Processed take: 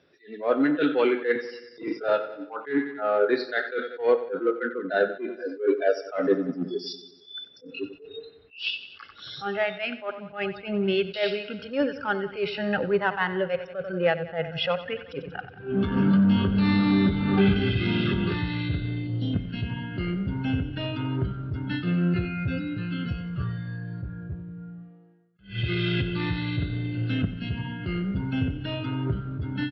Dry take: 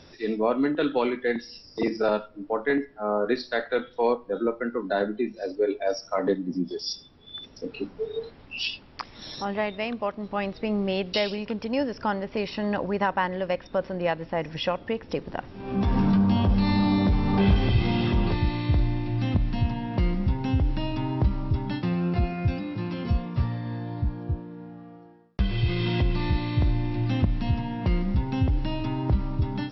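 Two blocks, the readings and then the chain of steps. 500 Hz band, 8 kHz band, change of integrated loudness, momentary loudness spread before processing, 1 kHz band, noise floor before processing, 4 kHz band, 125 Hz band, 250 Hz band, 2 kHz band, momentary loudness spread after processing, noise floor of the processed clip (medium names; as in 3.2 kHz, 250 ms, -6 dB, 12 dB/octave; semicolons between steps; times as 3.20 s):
+1.0 dB, no reading, 0.0 dB, 11 LU, -2.5 dB, -50 dBFS, +0.5 dB, -2.5 dB, +0.5 dB, +3.5 dB, 15 LU, -51 dBFS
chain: spectral selection erased 19.07–19.34 s, 950–2900 Hz; spectral noise reduction 17 dB; in parallel at -6 dB: overload inside the chain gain 28 dB; on the sum: cabinet simulation 150–3800 Hz, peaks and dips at 230 Hz -5 dB, 430 Hz +5 dB, 910 Hz -8 dB, 1.5 kHz +4 dB; on a send: feedback delay 92 ms, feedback 59%, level -15 dB; on the sum: attacks held to a fixed rise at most 180 dB/s; trim +2 dB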